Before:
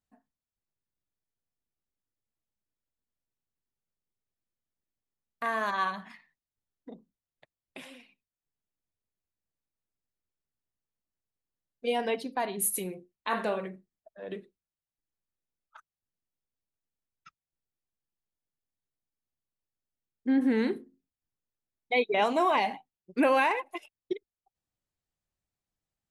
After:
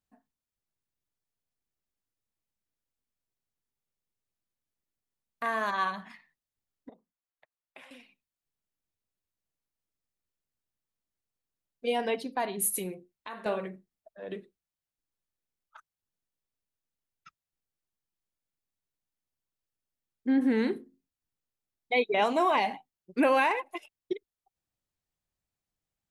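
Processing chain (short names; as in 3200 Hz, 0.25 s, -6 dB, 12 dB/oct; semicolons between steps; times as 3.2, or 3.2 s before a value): 6.89–7.91 three-band isolator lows -16 dB, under 600 Hz, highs -12 dB, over 2300 Hz; 12.94–13.46 compressor 2.5:1, threshold -45 dBFS, peak gain reduction 13.5 dB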